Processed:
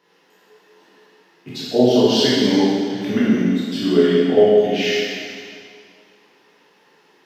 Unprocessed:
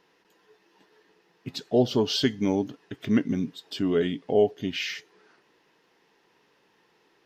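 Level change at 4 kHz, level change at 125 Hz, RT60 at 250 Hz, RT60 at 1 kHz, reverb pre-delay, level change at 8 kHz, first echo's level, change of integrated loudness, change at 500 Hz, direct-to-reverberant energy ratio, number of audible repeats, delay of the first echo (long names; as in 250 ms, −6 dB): +9.5 dB, +6.5 dB, 2.1 s, 2.1 s, 7 ms, +9.5 dB, no echo audible, +9.5 dB, +10.5 dB, −9.0 dB, no echo audible, no echo audible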